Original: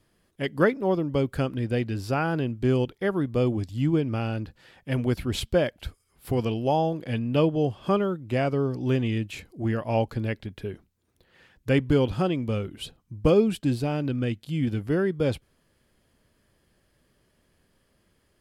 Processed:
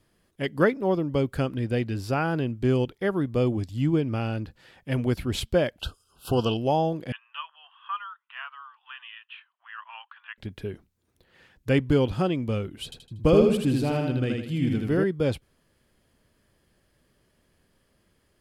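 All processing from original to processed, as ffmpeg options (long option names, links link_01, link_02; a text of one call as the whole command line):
ffmpeg -i in.wav -filter_complex "[0:a]asettb=1/sr,asplit=3[link_01][link_02][link_03];[link_01]atrim=end=5.814[link_04];[link_02]atrim=start=5.81:end=6.57,asetpts=PTS-STARTPTS,afade=type=in:duration=0.004:curve=qsin,afade=type=out:start_time=0.756:duration=0.004:curve=qsin,asuperstop=centerf=2000:order=20:qfactor=2,equalizer=frequency=2500:width=0.31:gain=9.5[link_05];[link_03]atrim=start=6.566[link_06];[link_04][link_05]acrossfade=duration=0.004:curve1=hsin:curve2=qsin[link_07];[link_07][link_06]acrossfade=duration=0.004:curve1=qsin:curve2=hsin,asettb=1/sr,asplit=3[link_08][link_09][link_10];[link_08]atrim=end=7.124[link_11];[link_09]atrim=start=7.12:end=10.38,asetpts=PTS-STARTPTS,afade=type=in:duration=0.004:curve=qsin,afade=type=out:start_time=3.256:duration=0.004:curve=qsin,asuperpass=centerf=1800:order=12:qfactor=0.81,equalizer=frequency=2200:width_type=o:width=0.23:gain=-14[link_12];[link_10]atrim=start=10.376[link_13];[link_11][link_12]acrossfade=duration=0.004:curve1=hsin:curve2=qsin[link_14];[link_14][link_13]acrossfade=duration=0.004:curve1=qsin:curve2=hsin,asettb=1/sr,asplit=3[link_15][link_16][link_17];[link_15]atrim=end=12.844[link_18];[link_16]atrim=start=12.84:end=15.04,asetpts=PTS-STARTPTS,afade=type=in:duration=0.004:curve=qsin,afade=type=out:start_time=2.196:duration=0.004:curve=qsin,agate=range=-33dB:threshold=-48dB:ratio=3:release=100:detection=peak,aecho=1:1:79|158|237|316|395:0.708|0.283|0.113|0.0453|0.0181,atrim=end_sample=97020[link_19];[link_17]atrim=start=15.036[link_20];[link_18][link_19]acrossfade=duration=0.004:curve1=hsin:curve2=qsin[link_21];[link_21][link_20]acrossfade=duration=0.004:curve1=qsin:curve2=hsin" out.wav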